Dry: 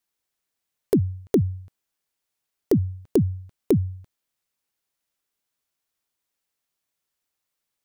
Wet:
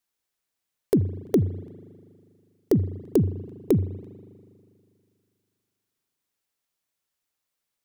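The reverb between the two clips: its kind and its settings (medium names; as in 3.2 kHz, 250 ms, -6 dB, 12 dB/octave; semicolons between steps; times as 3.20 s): spring tank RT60 2.3 s, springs 40 ms, chirp 40 ms, DRR 15 dB; trim -1 dB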